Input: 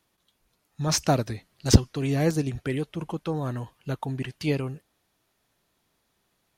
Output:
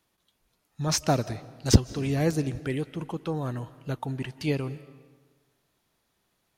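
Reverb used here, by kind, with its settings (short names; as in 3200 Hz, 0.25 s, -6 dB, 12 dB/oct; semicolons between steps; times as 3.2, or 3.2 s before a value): digital reverb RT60 1.4 s, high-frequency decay 0.75×, pre-delay 0.12 s, DRR 17.5 dB; gain -1.5 dB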